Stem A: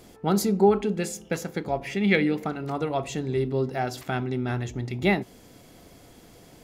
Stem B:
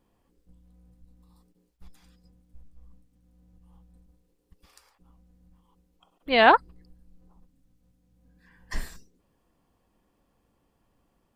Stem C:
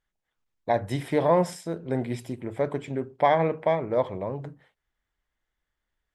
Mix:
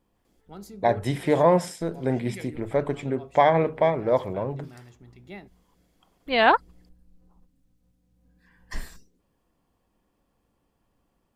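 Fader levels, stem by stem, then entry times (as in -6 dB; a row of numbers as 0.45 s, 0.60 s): -19.5 dB, -1.5 dB, +2.5 dB; 0.25 s, 0.00 s, 0.15 s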